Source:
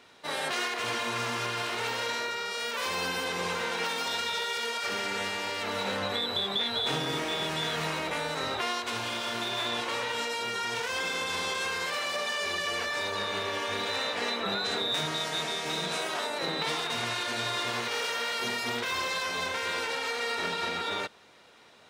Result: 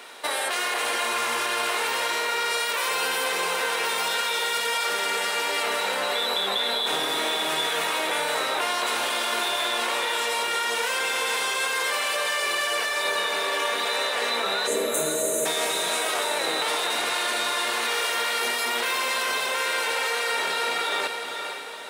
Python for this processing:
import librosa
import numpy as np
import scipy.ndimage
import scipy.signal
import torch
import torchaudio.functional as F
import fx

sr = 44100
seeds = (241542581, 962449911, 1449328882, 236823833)

p1 = scipy.signal.sosfilt(scipy.signal.butter(2, 430.0, 'highpass', fs=sr, output='sos'), x)
p2 = fx.high_shelf_res(p1, sr, hz=7600.0, db=6.5, q=1.5)
p3 = fx.spec_erase(p2, sr, start_s=14.67, length_s=0.79, low_hz=650.0, high_hz=6100.0)
p4 = fx.over_compress(p3, sr, threshold_db=-38.0, ratio=-0.5)
p5 = p3 + (p4 * 10.0 ** (1.0 / 20.0))
p6 = fx.echo_diffused(p5, sr, ms=482, feedback_pct=44, wet_db=-6)
y = p6 * 10.0 ** (2.5 / 20.0)